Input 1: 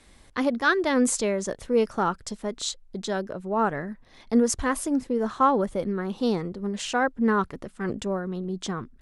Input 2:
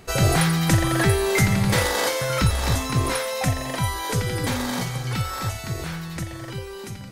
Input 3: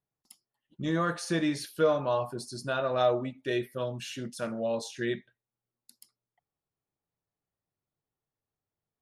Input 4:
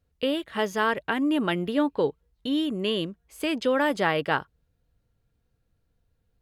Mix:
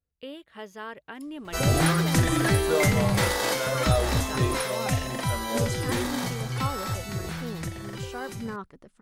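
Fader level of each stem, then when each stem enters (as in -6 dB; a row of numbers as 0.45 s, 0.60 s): -13.0 dB, -3.5 dB, -2.0 dB, -14.0 dB; 1.20 s, 1.45 s, 0.90 s, 0.00 s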